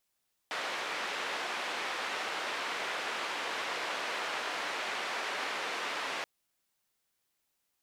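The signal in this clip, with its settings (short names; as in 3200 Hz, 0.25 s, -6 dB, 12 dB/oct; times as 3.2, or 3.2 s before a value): noise band 440–2400 Hz, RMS -36 dBFS 5.73 s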